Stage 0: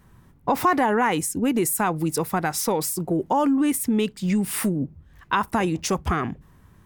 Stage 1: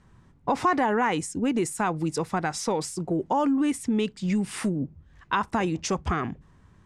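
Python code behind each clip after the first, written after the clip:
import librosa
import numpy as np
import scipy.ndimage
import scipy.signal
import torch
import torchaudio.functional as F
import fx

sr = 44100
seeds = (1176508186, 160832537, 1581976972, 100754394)

y = scipy.signal.sosfilt(scipy.signal.butter(4, 8100.0, 'lowpass', fs=sr, output='sos'), x)
y = y * 10.0 ** (-3.0 / 20.0)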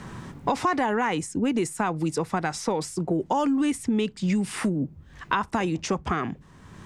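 y = fx.band_squash(x, sr, depth_pct=70)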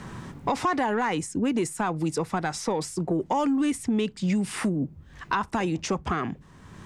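y = 10.0 ** (-14.0 / 20.0) * np.tanh(x / 10.0 ** (-14.0 / 20.0))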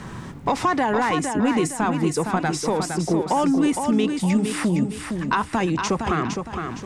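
y = fx.echo_feedback(x, sr, ms=462, feedback_pct=38, wet_db=-6.0)
y = y * 10.0 ** (4.0 / 20.0)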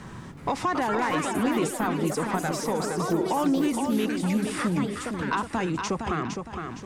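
y = fx.echo_pitch(x, sr, ms=373, semitones=4, count=2, db_per_echo=-6.0)
y = y * 10.0 ** (-5.5 / 20.0)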